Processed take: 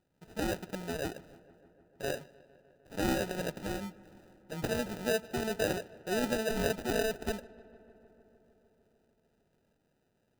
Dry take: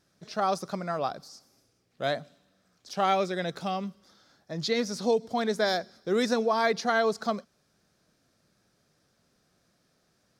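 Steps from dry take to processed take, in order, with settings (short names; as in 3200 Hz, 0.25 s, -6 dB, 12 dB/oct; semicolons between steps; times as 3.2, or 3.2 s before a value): bell 4000 Hz -6 dB 0.87 oct, from 2.94 s +11 dB, from 4.65 s +3 dB; sample-rate reducer 1100 Hz, jitter 0%; darkening echo 0.151 s, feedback 80%, low-pass 3600 Hz, level -23 dB; gain -6 dB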